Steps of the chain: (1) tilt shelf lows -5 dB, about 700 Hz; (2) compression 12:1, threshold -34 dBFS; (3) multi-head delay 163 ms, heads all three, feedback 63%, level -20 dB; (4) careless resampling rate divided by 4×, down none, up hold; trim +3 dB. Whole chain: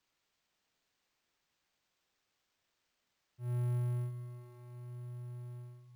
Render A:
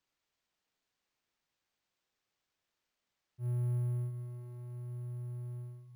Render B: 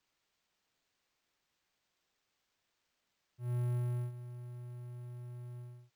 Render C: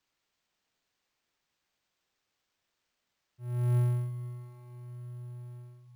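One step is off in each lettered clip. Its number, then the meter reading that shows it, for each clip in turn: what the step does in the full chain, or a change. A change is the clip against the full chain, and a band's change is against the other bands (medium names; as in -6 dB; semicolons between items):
1, momentary loudness spread change -4 LU; 3, momentary loudness spread change -4 LU; 2, crest factor change +3.0 dB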